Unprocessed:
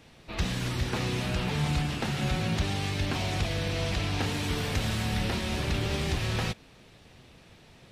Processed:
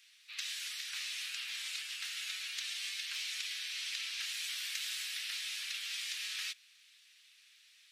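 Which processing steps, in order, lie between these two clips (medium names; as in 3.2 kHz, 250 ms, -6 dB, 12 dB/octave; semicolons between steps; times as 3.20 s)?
Bessel high-pass 2.8 kHz, order 6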